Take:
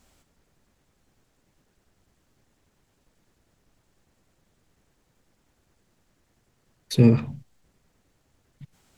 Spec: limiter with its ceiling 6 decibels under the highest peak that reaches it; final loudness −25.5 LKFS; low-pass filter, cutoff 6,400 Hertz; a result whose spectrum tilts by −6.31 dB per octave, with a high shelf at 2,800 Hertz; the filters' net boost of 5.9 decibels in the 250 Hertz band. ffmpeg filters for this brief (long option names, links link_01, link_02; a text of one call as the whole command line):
ffmpeg -i in.wav -af "lowpass=6400,equalizer=frequency=250:width_type=o:gain=6.5,highshelf=frequency=2800:gain=-6,volume=-5.5dB,alimiter=limit=-12.5dB:level=0:latency=1" out.wav